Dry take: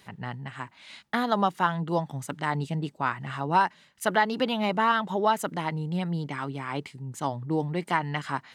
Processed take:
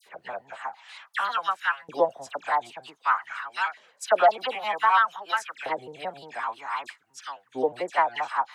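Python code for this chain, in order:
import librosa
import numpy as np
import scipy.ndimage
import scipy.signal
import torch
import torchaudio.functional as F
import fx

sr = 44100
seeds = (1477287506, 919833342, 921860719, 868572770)

y = fx.pitch_trill(x, sr, semitones=-3.5, every_ms=88)
y = fx.dispersion(y, sr, late='lows', ms=65.0, hz=2000.0)
y = fx.filter_lfo_highpass(y, sr, shape='saw_up', hz=0.53, low_hz=460.0, high_hz=2000.0, q=2.6)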